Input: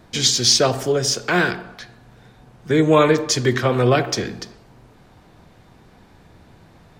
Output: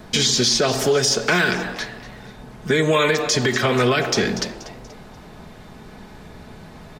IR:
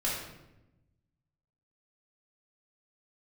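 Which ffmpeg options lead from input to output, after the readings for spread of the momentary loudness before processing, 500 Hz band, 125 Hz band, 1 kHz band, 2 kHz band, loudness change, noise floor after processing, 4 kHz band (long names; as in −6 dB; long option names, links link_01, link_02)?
10 LU, −1.0 dB, −2.5 dB, −1.5 dB, +3.0 dB, −1.0 dB, −42 dBFS, 0.0 dB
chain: -filter_complex "[0:a]aecho=1:1:4.7:0.4,acrossover=split=650|1500|7500[link_01][link_02][link_03][link_04];[link_01]acompressor=threshold=-26dB:ratio=4[link_05];[link_02]acompressor=threshold=-34dB:ratio=4[link_06];[link_03]acompressor=threshold=-23dB:ratio=4[link_07];[link_04]acompressor=threshold=-39dB:ratio=4[link_08];[link_05][link_06][link_07][link_08]amix=inputs=4:normalize=0,asplit=4[link_09][link_10][link_11][link_12];[link_10]adelay=240,afreqshift=130,volume=-17dB[link_13];[link_11]adelay=480,afreqshift=260,volume=-24.7dB[link_14];[link_12]adelay=720,afreqshift=390,volume=-32.5dB[link_15];[link_09][link_13][link_14][link_15]amix=inputs=4:normalize=0,alimiter=level_in=15.5dB:limit=-1dB:release=50:level=0:latency=1,volume=-7.5dB"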